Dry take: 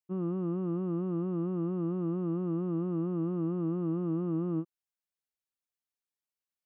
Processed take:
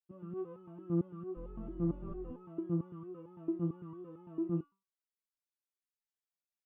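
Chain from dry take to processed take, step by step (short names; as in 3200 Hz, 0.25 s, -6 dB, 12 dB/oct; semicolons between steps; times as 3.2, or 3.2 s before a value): 1.36–2.32 octaver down 2 oct, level +4 dB; stepped resonator 8.9 Hz 170–430 Hz; gain +4.5 dB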